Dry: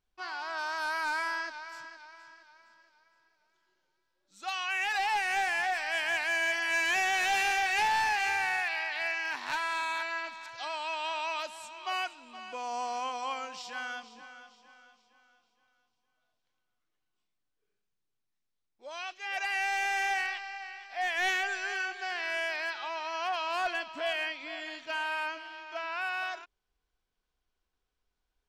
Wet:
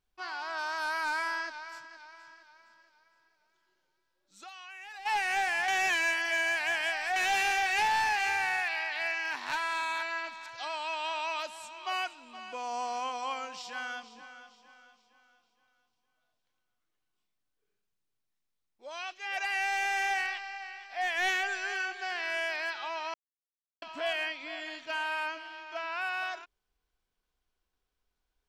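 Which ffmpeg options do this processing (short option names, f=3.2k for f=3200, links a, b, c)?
-filter_complex "[0:a]asplit=3[a][b][c];[a]afade=t=out:st=1.78:d=0.02[d];[b]acompressor=threshold=-44dB:ratio=6:attack=3.2:release=140:knee=1:detection=peak,afade=t=in:st=1.78:d=0.02,afade=t=out:st=5.05:d=0.02[e];[c]afade=t=in:st=5.05:d=0.02[f];[d][e][f]amix=inputs=3:normalize=0,asplit=5[g][h][i][j][k];[g]atrim=end=5.682[l];[h]atrim=start=5.678:end=7.162,asetpts=PTS-STARTPTS,areverse[m];[i]atrim=start=7.158:end=23.14,asetpts=PTS-STARTPTS,afade=t=out:st=15.978:d=0.004:c=hsin[n];[j]atrim=start=23.14:end=23.82,asetpts=PTS-STARTPTS,volume=0[o];[k]atrim=start=23.82,asetpts=PTS-STARTPTS,afade=t=in:d=0.004:c=hsin[p];[l][m]acrossfade=d=0.004:c1=hsin:c2=hsin[q];[n][o][p]concat=n=3:v=0:a=1[r];[q][r]acrossfade=d=0.004:c1=hsin:c2=hsin"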